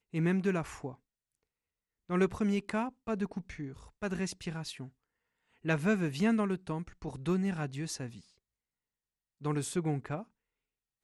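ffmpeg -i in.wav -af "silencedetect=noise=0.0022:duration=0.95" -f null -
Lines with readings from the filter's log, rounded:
silence_start: 0.95
silence_end: 2.09 | silence_duration: 1.14
silence_start: 8.22
silence_end: 9.41 | silence_duration: 1.18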